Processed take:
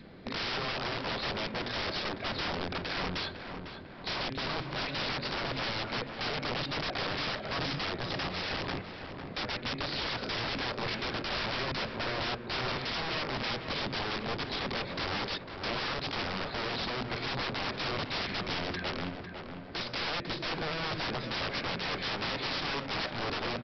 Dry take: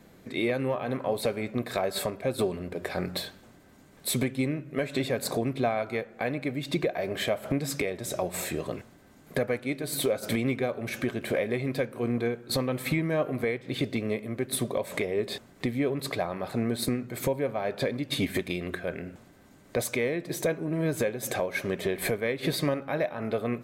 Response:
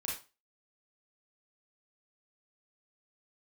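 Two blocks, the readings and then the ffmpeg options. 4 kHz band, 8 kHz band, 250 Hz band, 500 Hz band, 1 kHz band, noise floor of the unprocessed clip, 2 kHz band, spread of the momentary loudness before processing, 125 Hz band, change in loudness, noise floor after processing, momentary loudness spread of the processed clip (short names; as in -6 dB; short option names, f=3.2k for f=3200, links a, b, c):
+4.5 dB, -16.0 dB, -9.0 dB, -9.5 dB, +2.0 dB, -55 dBFS, +1.0 dB, 5 LU, -6.0 dB, -3.5 dB, -44 dBFS, 3 LU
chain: -filter_complex "[0:a]adynamicequalizer=threshold=0.00794:dfrequency=650:dqfactor=1:tfrequency=650:tqfactor=1:attack=5:release=100:ratio=0.375:range=4:mode=cutabove:tftype=bell,acompressor=mode=upward:threshold=-51dB:ratio=2.5,aeval=exprs='(tanh(11.2*val(0)+0.45)-tanh(0.45))/11.2':c=same,aresample=11025,aeval=exprs='(mod(50.1*val(0)+1,2)-1)/50.1':c=same,aresample=44100,asplit=2[a][b];[b]adelay=501,lowpass=f=2.1k:p=1,volume=-7dB,asplit=2[c][d];[d]adelay=501,lowpass=f=2.1k:p=1,volume=0.53,asplit=2[e][f];[f]adelay=501,lowpass=f=2.1k:p=1,volume=0.53,asplit=2[g][h];[h]adelay=501,lowpass=f=2.1k:p=1,volume=0.53,asplit=2[i][j];[j]adelay=501,lowpass=f=2.1k:p=1,volume=0.53,asplit=2[k][l];[l]adelay=501,lowpass=f=2.1k:p=1,volume=0.53[m];[a][c][e][g][i][k][m]amix=inputs=7:normalize=0,volume=5dB"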